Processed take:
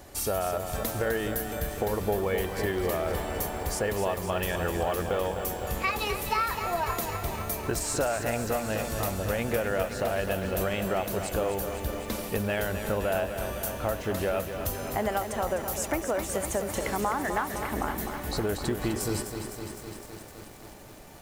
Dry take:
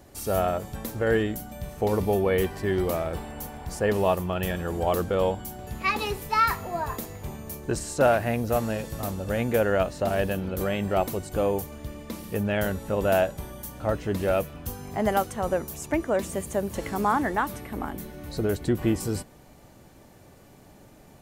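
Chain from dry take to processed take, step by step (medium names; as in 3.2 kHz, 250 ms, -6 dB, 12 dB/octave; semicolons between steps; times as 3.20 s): peaking EQ 170 Hz -7 dB 2.6 oct; compression, threshold -32 dBFS, peak gain reduction 13.5 dB; bit-crushed delay 255 ms, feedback 80%, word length 9-bit, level -8 dB; trim +6 dB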